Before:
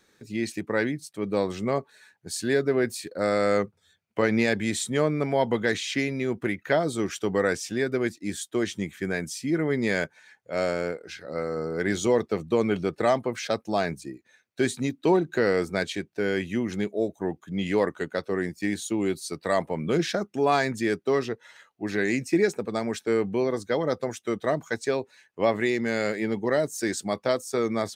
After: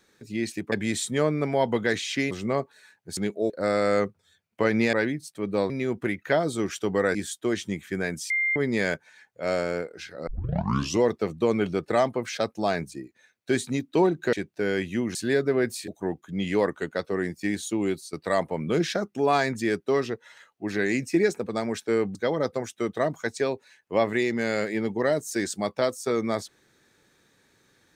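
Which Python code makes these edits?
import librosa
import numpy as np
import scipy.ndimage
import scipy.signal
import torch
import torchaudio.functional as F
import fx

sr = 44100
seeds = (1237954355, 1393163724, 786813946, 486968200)

y = fx.edit(x, sr, fx.swap(start_s=0.72, length_s=0.77, other_s=4.51, other_length_s=1.59),
    fx.swap(start_s=2.35, length_s=0.73, other_s=16.74, other_length_s=0.33),
    fx.cut(start_s=7.55, length_s=0.7),
    fx.bleep(start_s=9.4, length_s=0.26, hz=2100.0, db=-21.5),
    fx.tape_start(start_s=11.37, length_s=0.75),
    fx.cut(start_s=15.43, length_s=0.49),
    fx.fade_out_to(start_s=19.03, length_s=0.29, curve='qsin', floor_db=-13.5),
    fx.cut(start_s=23.34, length_s=0.28), tone=tone)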